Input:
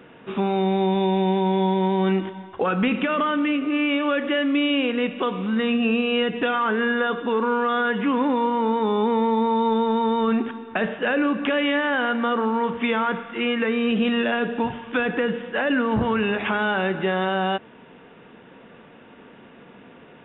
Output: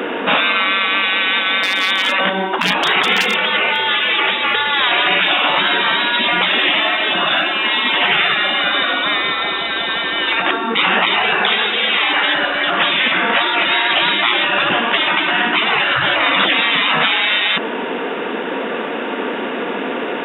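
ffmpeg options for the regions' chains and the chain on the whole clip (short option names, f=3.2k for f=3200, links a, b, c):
-filter_complex "[0:a]asettb=1/sr,asplit=3[a][b][c];[a]atrim=end=1.634[d];[b]atrim=start=1.63:end=3.8,asetpts=PTS-STARTPTS,afade=t=in:d=0.004:c=qsin,afade=t=out:st=2.166:d=0.004:c=qsin,lowshelf=f=240:g=-6,volume=15.5dB,asoftclip=hard,volume=-15.5dB[e];[c]atrim=start=3.796[f];[d][e]acrossfade=d=0.004:c1=hsin:c2=qsin[g];[g][f]acrossfade=d=0.004:c1=qsin:c2=hsin,asettb=1/sr,asplit=3[h][i][j];[h]atrim=end=4.874[k];[i]atrim=start=4.87:end=8.94,asetpts=PTS-STARTPTS,afade=t=in:d=0.004:c=qsin,afade=t=out:st=4.066:d=0.004:c=qsin,bandreject=f=60:t=h:w=6,bandreject=f=120:t=h:w=6,bandreject=f=180:t=h:w=6,bandreject=f=240:t=h:w=6,bandreject=f=300:t=h:w=6,bandreject=f=360:t=h:w=6,asplit=2[l][m];[m]adelay=16,volume=-7.5dB[n];[l][n]amix=inputs=2:normalize=0,atrim=end_sample=179487,aecho=1:1:82|164|246|328|410|492|574:0.316|0.18|0.103|0.0586|0.0334|0.019|0.0108,atrim=end_sample=179487[o];[j]atrim=start=8.936[p];[k][o]acrossfade=d=0.004:c1=hsin:c2=qsin[q];[q][p]acrossfade=d=0.004:c1=qsin:c2=hsin,highpass=f=260:w=0.5412,highpass=f=260:w=1.3066,afftfilt=real='re*lt(hypot(re,im),0.0501)':imag='im*lt(hypot(re,im),0.0501)':win_size=1024:overlap=0.75,alimiter=level_in=26.5dB:limit=-1dB:release=50:level=0:latency=1"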